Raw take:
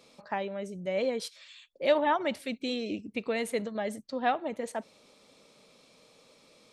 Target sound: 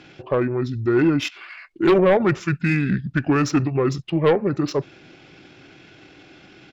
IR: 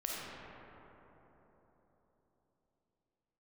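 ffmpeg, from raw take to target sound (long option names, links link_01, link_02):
-af "asetrate=27781,aresample=44100,atempo=1.5874,aeval=exprs='0.2*sin(PI/2*2*val(0)/0.2)':channel_layout=same,adynamicsmooth=sensitivity=6:basefreq=7100,volume=3.5dB"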